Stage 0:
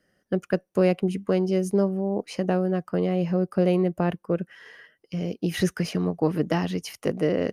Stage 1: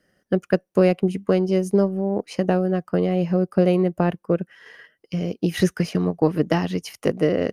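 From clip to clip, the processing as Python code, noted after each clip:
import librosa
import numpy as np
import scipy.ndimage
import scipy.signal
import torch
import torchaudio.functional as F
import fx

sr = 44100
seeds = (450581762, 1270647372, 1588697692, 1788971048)

y = fx.transient(x, sr, attack_db=2, sustain_db=-4)
y = F.gain(torch.from_numpy(y), 3.0).numpy()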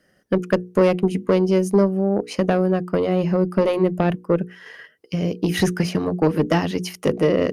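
y = fx.cheby_harmonics(x, sr, harmonics=(5,), levels_db=(-18,), full_scale_db=-4.0)
y = fx.hum_notches(y, sr, base_hz=60, count=8)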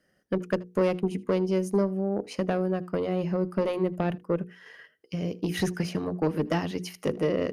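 y = x + 10.0 ** (-23.0 / 20.0) * np.pad(x, (int(79 * sr / 1000.0), 0))[:len(x)]
y = F.gain(torch.from_numpy(y), -8.0).numpy()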